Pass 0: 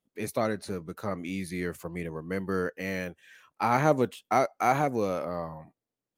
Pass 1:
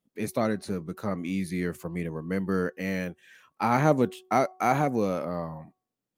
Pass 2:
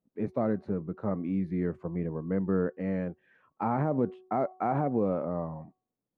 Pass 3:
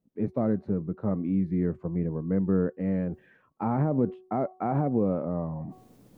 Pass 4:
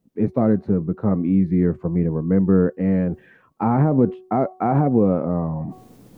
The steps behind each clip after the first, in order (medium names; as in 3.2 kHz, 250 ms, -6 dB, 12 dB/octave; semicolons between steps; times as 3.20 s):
peaking EQ 200 Hz +5.5 dB 1.2 oct; de-hum 371.5 Hz, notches 3
low-pass 1 kHz 12 dB/octave; peak limiter -17.5 dBFS, peak gain reduction 9 dB
bass shelf 460 Hz +9 dB; reverse; upward compressor, threshold -27 dBFS; reverse; trim -3.5 dB
band-stop 590 Hz, Q 16; trim +8.5 dB